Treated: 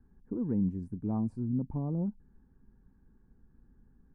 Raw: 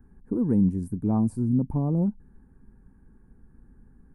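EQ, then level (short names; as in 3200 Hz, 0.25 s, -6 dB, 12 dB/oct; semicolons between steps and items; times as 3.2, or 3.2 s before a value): air absorption 120 m; -8.0 dB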